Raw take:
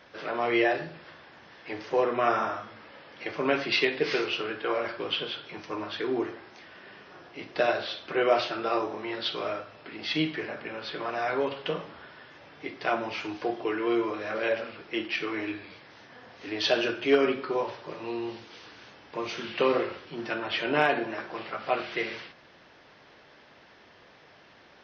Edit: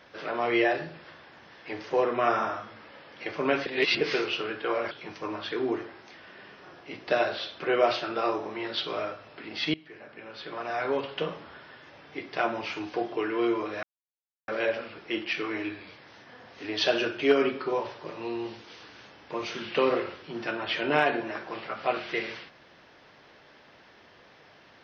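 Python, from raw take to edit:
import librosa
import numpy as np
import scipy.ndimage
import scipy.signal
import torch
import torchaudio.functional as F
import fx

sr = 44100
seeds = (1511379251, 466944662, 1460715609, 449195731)

y = fx.edit(x, sr, fx.reverse_span(start_s=3.66, length_s=0.35),
    fx.cut(start_s=4.91, length_s=0.48),
    fx.fade_in_from(start_s=10.22, length_s=1.23, floor_db=-23.0),
    fx.insert_silence(at_s=14.31, length_s=0.65), tone=tone)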